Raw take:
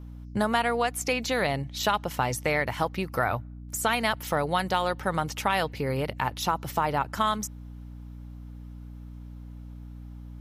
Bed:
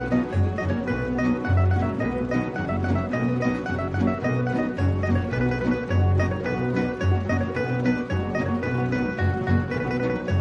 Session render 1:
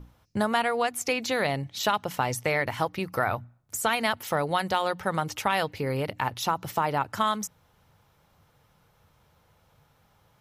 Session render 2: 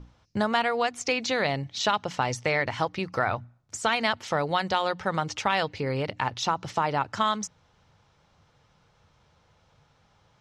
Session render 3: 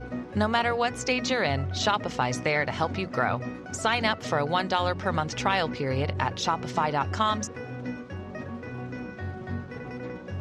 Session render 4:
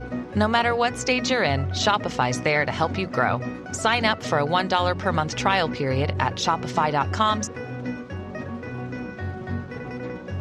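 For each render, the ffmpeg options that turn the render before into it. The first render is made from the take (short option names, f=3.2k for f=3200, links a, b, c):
-af "bandreject=f=60:t=h:w=6,bandreject=f=120:t=h:w=6,bandreject=f=180:t=h:w=6,bandreject=f=240:t=h:w=6,bandreject=f=300:t=h:w=6"
-af "lowpass=f=6.4k:w=0.5412,lowpass=f=6.4k:w=1.3066,highshelf=f=4.4k:g=5.5"
-filter_complex "[1:a]volume=-12dB[a];[0:a][a]amix=inputs=2:normalize=0"
-af "volume=4dB"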